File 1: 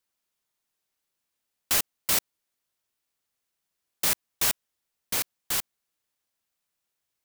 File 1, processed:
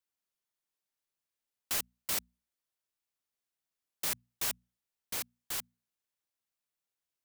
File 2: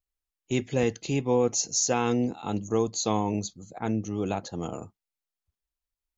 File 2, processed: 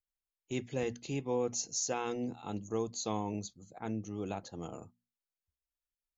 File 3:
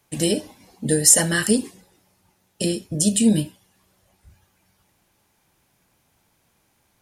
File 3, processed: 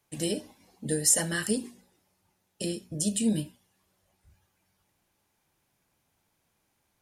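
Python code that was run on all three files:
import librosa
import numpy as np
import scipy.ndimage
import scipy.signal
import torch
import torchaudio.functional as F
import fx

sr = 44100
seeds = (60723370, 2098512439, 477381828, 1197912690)

y = fx.hum_notches(x, sr, base_hz=60, count=4)
y = y * librosa.db_to_amplitude(-9.0)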